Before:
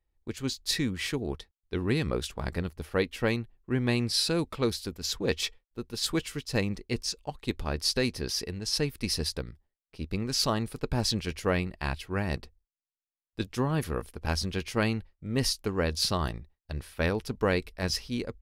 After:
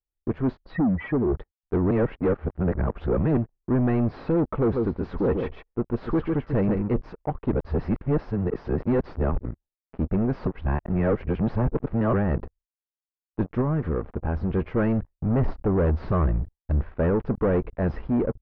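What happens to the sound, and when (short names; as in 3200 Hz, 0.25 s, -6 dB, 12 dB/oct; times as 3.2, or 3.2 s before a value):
0.65–1.35 spectral contrast raised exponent 2.7
1.91–3.37 reverse
4.49–6.99 echo 0.143 s -8 dB
7.52–9.45 reverse
10.47–12.13 reverse
13.61–14.51 compressor 3:1, threshold -32 dBFS
15.1–16.98 low shelf 110 Hz +8 dB
whole clip: bell 93 Hz -4 dB 0.48 oct; sample leveller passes 5; Bessel low-pass 1000 Hz, order 4; gain -4 dB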